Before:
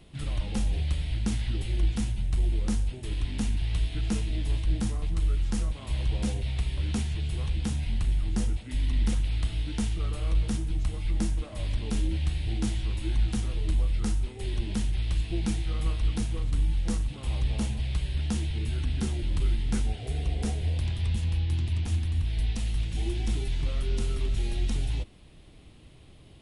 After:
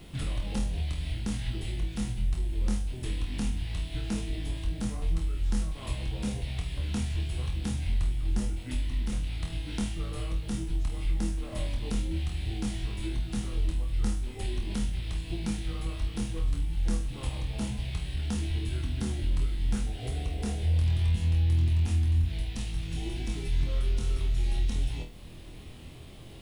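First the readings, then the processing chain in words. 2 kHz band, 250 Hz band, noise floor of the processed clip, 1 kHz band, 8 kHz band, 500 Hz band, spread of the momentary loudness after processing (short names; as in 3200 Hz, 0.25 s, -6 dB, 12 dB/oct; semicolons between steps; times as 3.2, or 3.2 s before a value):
-1.0 dB, -1.5 dB, -43 dBFS, -1.0 dB, -1.5 dB, -1.5 dB, 8 LU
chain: compressor 3:1, threshold -36 dBFS, peak gain reduction 12 dB; added noise white -75 dBFS; flutter echo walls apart 4.2 m, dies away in 0.31 s; gain +5 dB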